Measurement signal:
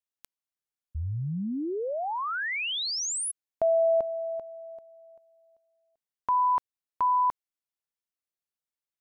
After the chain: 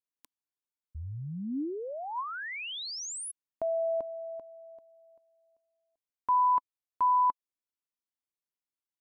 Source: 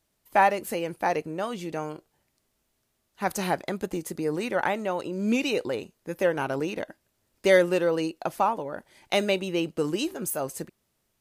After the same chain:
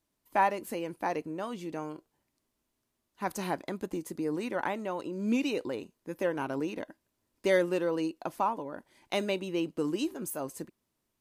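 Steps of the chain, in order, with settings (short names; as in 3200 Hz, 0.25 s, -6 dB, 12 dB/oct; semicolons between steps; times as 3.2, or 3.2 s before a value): small resonant body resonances 280/1000 Hz, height 7 dB, ringing for 25 ms; gain -7.5 dB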